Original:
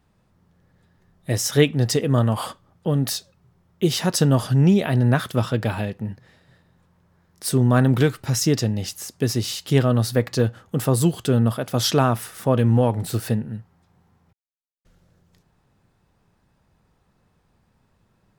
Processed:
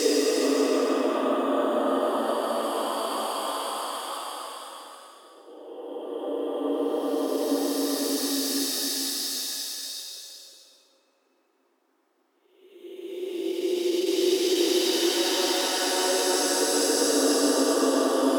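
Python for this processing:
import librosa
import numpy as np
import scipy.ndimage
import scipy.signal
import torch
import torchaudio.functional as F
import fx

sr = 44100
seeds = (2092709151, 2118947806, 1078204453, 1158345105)

y = fx.octave_divider(x, sr, octaves=1, level_db=-1.0)
y = scipy.signal.sosfilt(scipy.signal.butter(12, 270.0, 'highpass', fs=sr, output='sos'), y)
y = fx.paulstretch(y, sr, seeds[0], factor=7.7, window_s=0.5, from_s=1.98)
y = fx.end_taper(y, sr, db_per_s=150.0)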